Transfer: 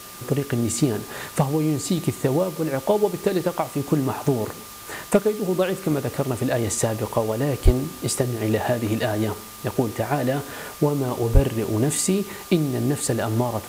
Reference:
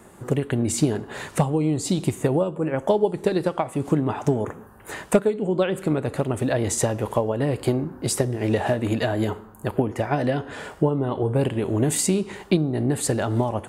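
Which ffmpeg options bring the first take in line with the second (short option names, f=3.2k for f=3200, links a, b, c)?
-filter_complex "[0:a]adeclick=t=4,bandreject=f=1.2k:w=30,asplit=3[a][b][c];[a]afade=t=out:st=7.64:d=0.02[d];[b]highpass=f=140:w=0.5412,highpass=f=140:w=1.3066,afade=t=in:st=7.64:d=0.02,afade=t=out:st=7.76:d=0.02[e];[c]afade=t=in:st=7.76:d=0.02[f];[d][e][f]amix=inputs=3:normalize=0,asplit=3[g][h][i];[g]afade=t=out:st=11.33:d=0.02[j];[h]highpass=f=140:w=0.5412,highpass=f=140:w=1.3066,afade=t=in:st=11.33:d=0.02,afade=t=out:st=11.45:d=0.02[k];[i]afade=t=in:st=11.45:d=0.02[l];[j][k][l]amix=inputs=3:normalize=0,afwtdn=0.01"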